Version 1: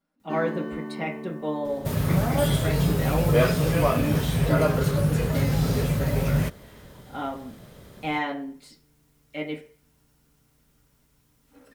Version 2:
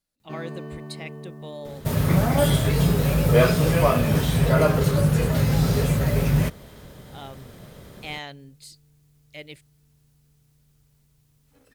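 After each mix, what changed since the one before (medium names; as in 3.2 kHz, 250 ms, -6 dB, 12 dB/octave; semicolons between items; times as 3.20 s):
speech: add treble shelf 2.2 kHz +11.5 dB; second sound +3.0 dB; reverb: off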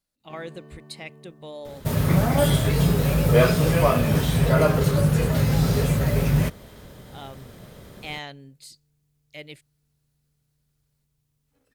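first sound -10.5 dB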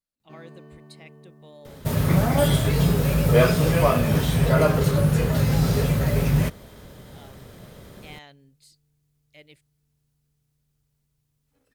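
speech -10.0 dB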